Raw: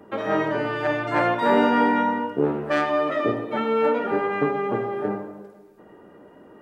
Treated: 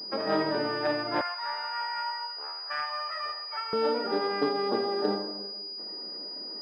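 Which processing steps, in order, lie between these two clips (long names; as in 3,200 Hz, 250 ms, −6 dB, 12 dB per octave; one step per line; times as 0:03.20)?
speech leveller 0.5 s
high-pass filter 140 Hz 24 dB per octave, from 0:01.21 950 Hz, from 0:03.73 200 Hz
switching amplifier with a slow clock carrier 4,900 Hz
level −5.5 dB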